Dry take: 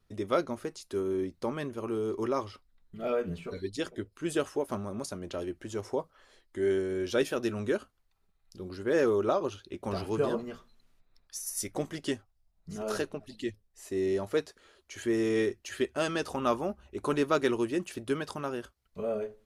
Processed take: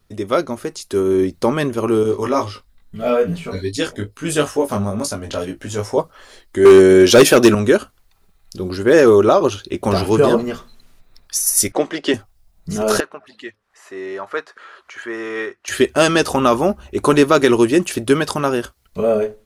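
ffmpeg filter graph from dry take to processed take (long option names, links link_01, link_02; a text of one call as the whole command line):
ffmpeg -i in.wav -filter_complex "[0:a]asettb=1/sr,asplit=3[link_01][link_02][link_03];[link_01]atrim=end=2.034[link_04];[link_02]atrim=start=2.03:end=5.98,asetpts=PTS-STARTPTS,afade=type=in:duration=0.004:curve=qsin,afade=type=out:start_time=3.946:duration=0.004:curve=qsin,bandreject=frequency=350:width=5.3,flanger=delay=17.5:depth=2.5:speed=2.3,asplit=2[link_05][link_06];[link_06]adelay=21,volume=-10dB[link_07];[link_05][link_07]amix=inputs=2:normalize=0,atrim=end_sample=174195[link_08];[link_03]atrim=start=5.976[link_09];[link_04][link_08]acrossfade=duration=0.004:curve1=hsin:curve2=qsin[link_10];[link_10][link_09]acrossfade=duration=0.004:curve1=qsin:curve2=hsin,asettb=1/sr,asplit=3[link_11][link_12][link_13];[link_11]atrim=end=6.654[link_14];[link_12]atrim=start=6.65:end=7.55,asetpts=PTS-STARTPTS,afade=type=in:duration=0.004:curve=qsin,afade=type=out:start_time=0.896:duration=0.004:curve=qsin,highpass=120,acontrast=85,volume=18dB,asoftclip=hard,volume=-18dB[link_15];[link_13]atrim=start=7.546[link_16];[link_14][link_15]acrossfade=duration=0.004:curve1=hsin:curve2=qsin[link_17];[link_17][link_16]acrossfade=duration=0.004:curve1=qsin:curve2=hsin,asettb=1/sr,asplit=3[link_18][link_19][link_20];[link_18]atrim=end=11.724[link_21];[link_19]atrim=start=11.72:end=12.14,asetpts=PTS-STARTPTS,afade=type=in:duration=0.004:curve=qsin,afade=type=out:start_time=0.416:duration=0.004:curve=qsin,lowpass=frequency=9900:width=0.5412,lowpass=frequency=9900:width=1.3066,acrossover=split=250 4500:gain=0.0794 1 0.126[link_22][link_23][link_24];[link_22][link_23][link_24]amix=inputs=3:normalize=0[link_25];[link_20]atrim=start=12.136[link_26];[link_21][link_25]acrossfade=duration=0.004:curve1=hsin:curve2=qsin[link_27];[link_27][link_26]acrossfade=duration=0.004:curve1=qsin:curve2=hsin,asettb=1/sr,asplit=3[link_28][link_29][link_30];[link_28]atrim=end=13.004[link_31];[link_29]atrim=start=13:end=15.68,asetpts=PTS-STARTPTS,afade=type=in:duration=0.004:curve=qsin,afade=type=out:start_time=2.676:duration=0.004:curve=qsin,acompressor=mode=upward:threshold=-41dB:ratio=2.5:attack=3.2:release=140:knee=2.83:detection=peak,bandpass=frequency=1300:width_type=q:width=2[link_32];[link_30]atrim=start=15.676[link_33];[link_31][link_32]acrossfade=duration=0.004:curve1=hsin:curve2=qsin[link_34];[link_34][link_33]acrossfade=duration=0.004:curve1=qsin:curve2=hsin,highshelf=frequency=6700:gain=5,dynaudnorm=framelen=620:gausssize=3:maxgain=7dB,alimiter=level_in=10.5dB:limit=-1dB:release=50:level=0:latency=1,volume=-1dB" out.wav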